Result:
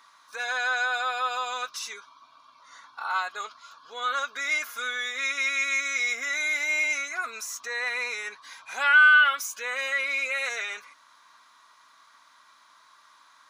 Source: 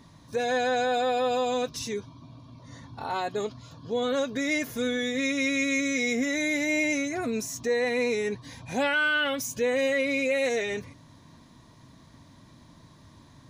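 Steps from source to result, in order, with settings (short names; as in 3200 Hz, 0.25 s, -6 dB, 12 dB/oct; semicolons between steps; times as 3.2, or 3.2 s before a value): resonant high-pass 1300 Hz, resonance Q 4.3; notch 1800 Hz, Q 11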